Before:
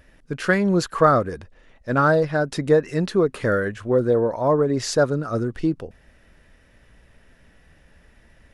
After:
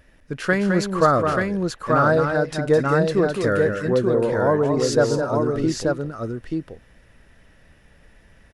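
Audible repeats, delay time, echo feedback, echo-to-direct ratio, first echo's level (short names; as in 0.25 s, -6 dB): 3, 0.211 s, no steady repeat, -1.5 dB, -6.5 dB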